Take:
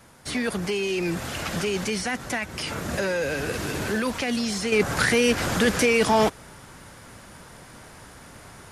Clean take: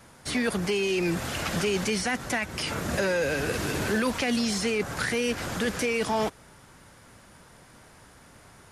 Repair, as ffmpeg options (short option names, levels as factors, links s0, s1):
-af "agate=range=0.0891:threshold=0.0126,asetnsamples=n=441:p=0,asendcmd='4.72 volume volume -7dB',volume=1"